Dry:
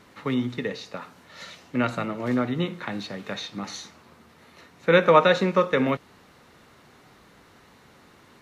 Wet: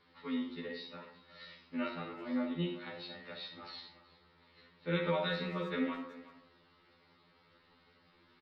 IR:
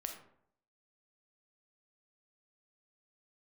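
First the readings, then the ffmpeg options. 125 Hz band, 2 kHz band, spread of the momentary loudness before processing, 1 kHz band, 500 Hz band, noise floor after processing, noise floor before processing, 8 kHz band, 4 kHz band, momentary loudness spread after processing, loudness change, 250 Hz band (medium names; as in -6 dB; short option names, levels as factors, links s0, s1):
-12.0 dB, -14.0 dB, 21 LU, -17.5 dB, -16.5 dB, -68 dBFS, -55 dBFS, no reading, -10.0 dB, 19 LU, -14.5 dB, -10.5 dB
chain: -filter_complex "[0:a]bandreject=f=690:w=12,acrossover=split=400|3100[s0][s1][s2];[s1]alimiter=limit=0.2:level=0:latency=1:release=118[s3];[s2]acontrast=38[s4];[s0][s3][s4]amix=inputs=3:normalize=0[s5];[1:a]atrim=start_sample=2205[s6];[s5][s6]afir=irnorm=-1:irlink=0,aresample=11025,aresample=44100,asplit=2[s7][s8];[s8]adelay=370,highpass=300,lowpass=3400,asoftclip=type=hard:threshold=0.106,volume=0.158[s9];[s7][s9]amix=inputs=2:normalize=0,afftfilt=real='re*2*eq(mod(b,4),0)':imag='im*2*eq(mod(b,4),0)':win_size=2048:overlap=0.75,volume=0.355"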